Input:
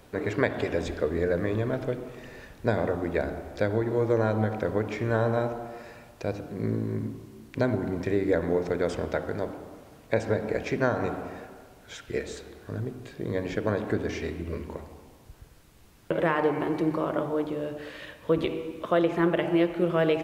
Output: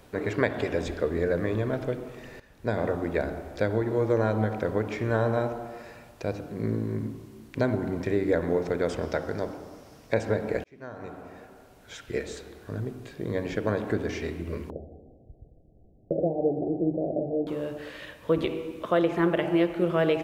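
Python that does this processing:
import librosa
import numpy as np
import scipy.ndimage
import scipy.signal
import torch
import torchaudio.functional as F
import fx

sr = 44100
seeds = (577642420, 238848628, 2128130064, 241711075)

y = fx.peak_eq(x, sr, hz=5400.0, db=9.5, octaves=0.39, at=(9.02, 10.14))
y = fx.steep_lowpass(y, sr, hz=750.0, slope=96, at=(14.7, 17.47))
y = fx.edit(y, sr, fx.fade_in_from(start_s=2.4, length_s=0.46, floor_db=-14.0),
    fx.fade_in_span(start_s=10.64, length_s=1.43), tone=tone)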